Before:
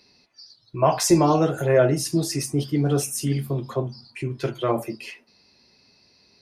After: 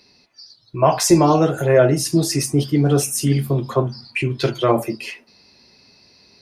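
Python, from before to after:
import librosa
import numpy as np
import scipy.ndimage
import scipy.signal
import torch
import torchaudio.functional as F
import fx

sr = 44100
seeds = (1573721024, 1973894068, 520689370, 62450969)

p1 = fx.rider(x, sr, range_db=3, speed_s=0.5)
p2 = x + (p1 * librosa.db_to_amplitude(-2.0))
y = fx.peak_eq(p2, sr, hz=fx.line((3.75, 1200.0), (4.64, 5800.0)), db=10.0, octaves=0.65, at=(3.75, 4.64), fade=0.02)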